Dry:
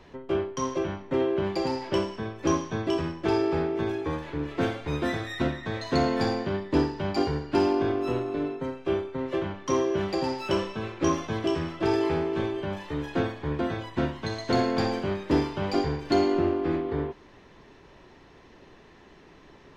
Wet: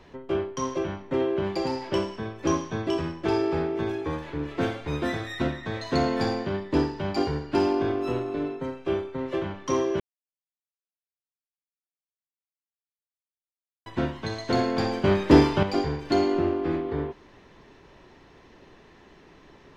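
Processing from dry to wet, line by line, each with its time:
0:10.00–0:13.86: silence
0:15.04–0:15.63: clip gain +8 dB

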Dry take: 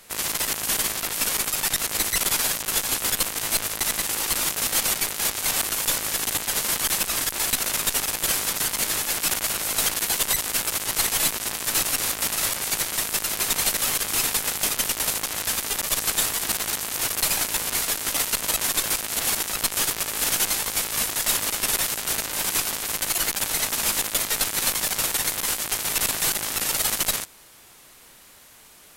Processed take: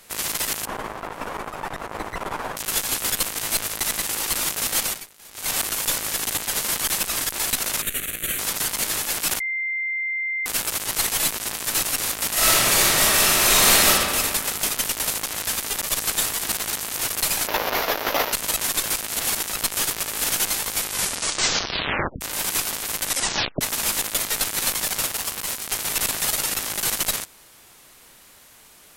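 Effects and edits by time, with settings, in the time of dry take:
0:00.65–0:02.57: drawn EQ curve 200 Hz 0 dB, 1,000 Hz +6 dB, 4,400 Hz −19 dB, 14,000 Hz −27 dB
0:04.82–0:05.53: duck −21.5 dB, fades 0.24 s
0:07.82–0:08.39: phaser with its sweep stopped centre 2,200 Hz, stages 4
0:09.40–0:10.46: beep over 2,090 Hz −23 dBFS
0:12.32–0:13.87: thrown reverb, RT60 2 s, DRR −10.5 dB
0:17.47–0:18.33: drawn EQ curve 140 Hz 0 dB, 270 Hz +5 dB, 580 Hz +14 dB, 5,800 Hz −2 dB, 8,700 Hz −21 dB, 13,000 Hz 0 dB
0:20.80: tape stop 1.41 s
0:23.05: tape stop 0.56 s
0:25.07–0:25.71: ring modulation 1,000 Hz
0:26.25–0:26.90: reverse

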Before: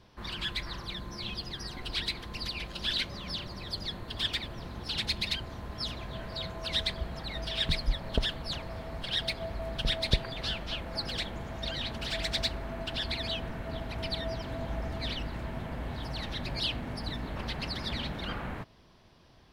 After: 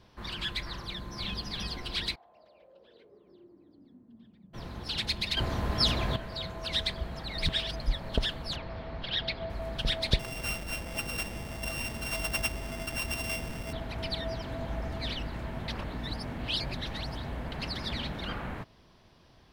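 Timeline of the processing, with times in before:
0:00.83–0:01.43: delay throw 330 ms, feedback 40%, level −2 dB
0:02.14–0:04.53: resonant band-pass 760 Hz → 180 Hz, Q 9
0:05.37–0:06.16: clip gain +10 dB
0:07.38–0:07.80: reverse
0:08.56–0:09.50: low-pass filter 4,600 Hz 24 dB per octave
0:10.19–0:13.73: samples sorted by size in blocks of 16 samples
0:15.68–0:17.52: reverse

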